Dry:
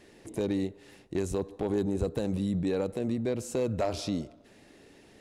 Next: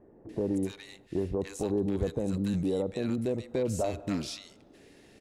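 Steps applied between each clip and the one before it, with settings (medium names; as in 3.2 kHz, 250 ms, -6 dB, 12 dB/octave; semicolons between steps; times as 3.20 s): bands offset in time lows, highs 290 ms, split 1.1 kHz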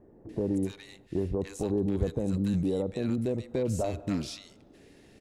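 bass shelf 240 Hz +5.5 dB; trim -1.5 dB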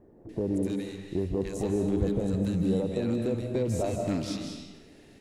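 reverberation RT60 1.1 s, pre-delay 122 ms, DRR 3 dB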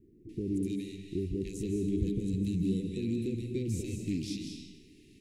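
elliptic band-stop 370–2300 Hz, stop band 40 dB; trim -2.5 dB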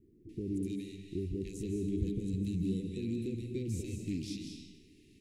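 peaking EQ 87 Hz +3.5 dB 0.27 oct; trim -3.5 dB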